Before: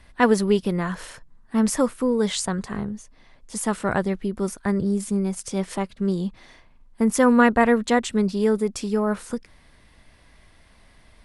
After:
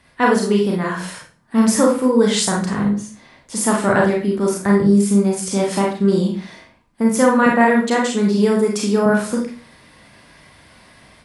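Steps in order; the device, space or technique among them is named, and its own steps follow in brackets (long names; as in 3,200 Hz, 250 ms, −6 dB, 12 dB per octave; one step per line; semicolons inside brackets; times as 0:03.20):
0:07.46–0:09.06: high-pass filter 160 Hz 24 dB per octave
far laptop microphone (convolution reverb RT60 0.40 s, pre-delay 30 ms, DRR −1.5 dB; high-pass filter 100 Hz 12 dB per octave; automatic gain control gain up to 6.5 dB)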